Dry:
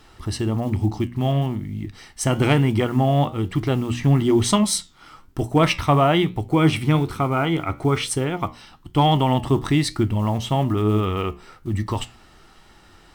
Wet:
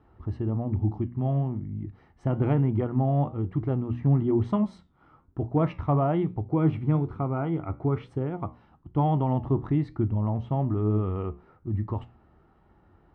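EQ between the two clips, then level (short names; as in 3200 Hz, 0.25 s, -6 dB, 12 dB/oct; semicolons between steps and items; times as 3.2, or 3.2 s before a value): HPF 64 Hz; LPF 1000 Hz 12 dB/oct; low shelf 110 Hz +8.5 dB; -7.5 dB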